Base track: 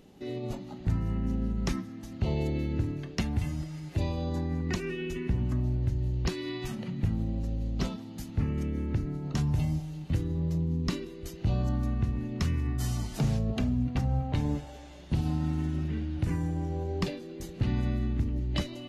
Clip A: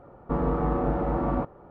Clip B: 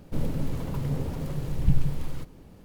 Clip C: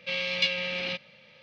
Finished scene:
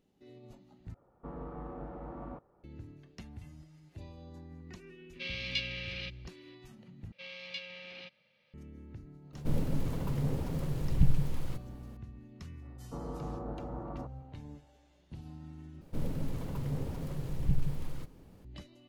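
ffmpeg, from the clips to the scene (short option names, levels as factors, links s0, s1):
-filter_complex "[1:a]asplit=2[s0][s1];[3:a]asplit=2[s2][s3];[2:a]asplit=2[s4][s5];[0:a]volume=0.126[s6];[s2]equalizer=f=800:w=1.2:g=-12[s7];[s1]lowpass=1500[s8];[s5]acontrast=64[s9];[s6]asplit=4[s10][s11][s12][s13];[s10]atrim=end=0.944[s14];[s0]atrim=end=1.7,asetpts=PTS-STARTPTS,volume=0.133[s15];[s11]atrim=start=2.636:end=7.124[s16];[s3]atrim=end=1.42,asetpts=PTS-STARTPTS,volume=0.158[s17];[s12]atrim=start=8.536:end=15.814[s18];[s9]atrim=end=2.64,asetpts=PTS-STARTPTS,volume=0.237[s19];[s13]atrim=start=18.446[s20];[s7]atrim=end=1.42,asetpts=PTS-STARTPTS,volume=0.422,afade=t=in:d=0.004:c=hsin,afade=t=out:st=1.416:d=0.004:c=hsin,adelay=226233S[s21];[s4]atrim=end=2.64,asetpts=PTS-STARTPTS,volume=0.708,afade=t=in:d=0.004:c=hsin,afade=t=out:st=2.636:d=0.004:c=hsin,adelay=9330[s22];[s8]atrim=end=1.7,asetpts=PTS-STARTPTS,volume=0.178,afade=t=in:d=0.004:c=hsin,afade=t=out:st=1.696:d=0.004:c=hsin,adelay=12620[s23];[s14][s15]acrossfade=d=0.004:c1=hsin:c2=hsin[s24];[s24][s16]acrossfade=d=0.004:c1=hsin:c2=hsin[s25];[s25][s17]acrossfade=d=0.004:c1=hsin:c2=hsin[s26];[s26][s18]acrossfade=d=0.004:c1=hsin:c2=hsin[s27];[s27][s19]acrossfade=d=0.004:c1=hsin:c2=hsin[s28];[s28][s20]acrossfade=d=0.004:c1=hsin:c2=hsin[s29];[s29][s21][s22][s23]amix=inputs=4:normalize=0"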